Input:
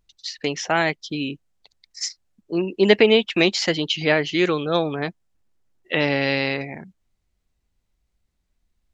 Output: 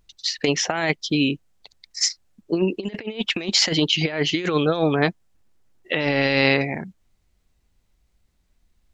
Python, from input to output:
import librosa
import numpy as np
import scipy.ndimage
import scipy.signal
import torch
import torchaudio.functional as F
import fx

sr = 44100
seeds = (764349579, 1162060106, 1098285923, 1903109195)

y = fx.over_compress(x, sr, threshold_db=-23.0, ratio=-0.5)
y = y * librosa.db_to_amplitude(3.0)